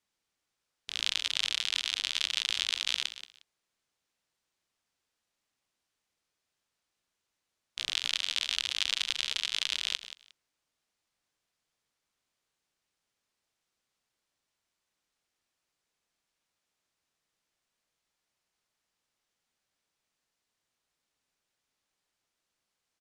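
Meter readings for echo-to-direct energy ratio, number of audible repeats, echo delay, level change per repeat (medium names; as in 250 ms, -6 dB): -13.0 dB, 2, 179 ms, -14.5 dB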